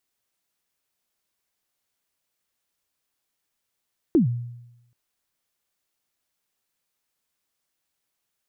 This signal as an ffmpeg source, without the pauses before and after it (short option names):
-f lavfi -i "aevalsrc='0.251*pow(10,-3*t/0.91)*sin(2*PI*(370*0.12/log(120/370)*(exp(log(120/370)*min(t,0.12)/0.12)-1)+120*max(t-0.12,0)))':d=0.78:s=44100"